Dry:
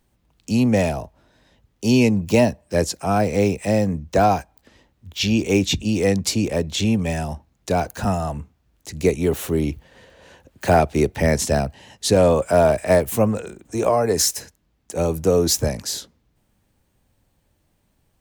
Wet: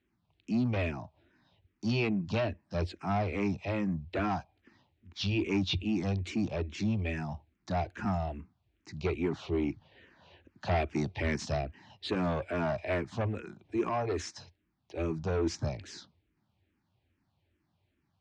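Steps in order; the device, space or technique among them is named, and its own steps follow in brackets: 10.75–11.56 high shelf 5100 Hz -> 9200 Hz +10.5 dB; barber-pole phaser into a guitar amplifier (endless phaser -2.4 Hz; soft clip -17 dBFS, distortion -12 dB; speaker cabinet 80–4600 Hz, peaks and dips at 90 Hz +7 dB, 340 Hz +5 dB, 500 Hz -9 dB, 2400 Hz +3 dB); gain -6.5 dB

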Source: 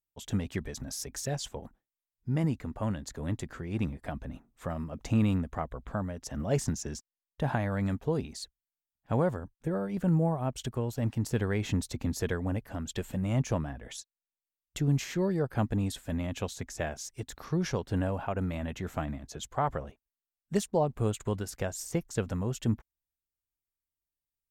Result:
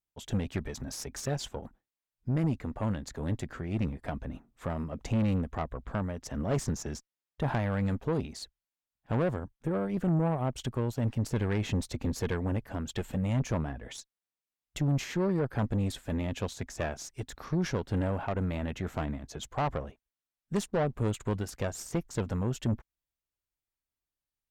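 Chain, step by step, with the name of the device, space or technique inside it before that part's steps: tube preamp driven hard (tube stage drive 27 dB, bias 0.5; high shelf 5800 Hz -7 dB); gain +4 dB

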